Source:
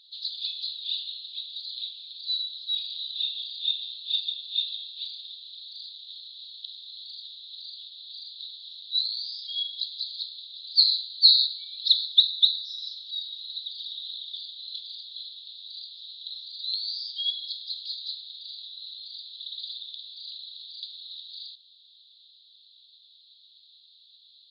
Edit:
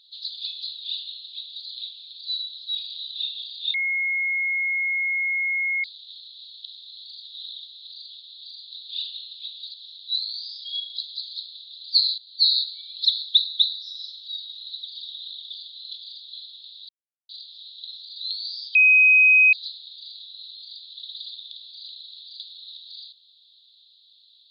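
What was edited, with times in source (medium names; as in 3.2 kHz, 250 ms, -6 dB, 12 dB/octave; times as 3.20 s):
0.82–1.67 s: copy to 8.57 s
3.74–5.84 s: bleep 2.16 kHz -21.5 dBFS
11.01–11.41 s: fade in, from -14 dB
13.99–14.31 s: copy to 7.34 s
15.72 s: insert silence 0.40 s
17.18–17.96 s: bleep 2.52 kHz -11.5 dBFS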